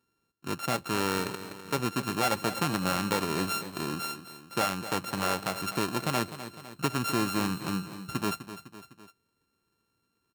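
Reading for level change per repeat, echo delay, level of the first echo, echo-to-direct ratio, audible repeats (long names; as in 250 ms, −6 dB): −5.0 dB, 253 ms, −12.5 dB, −11.0 dB, 3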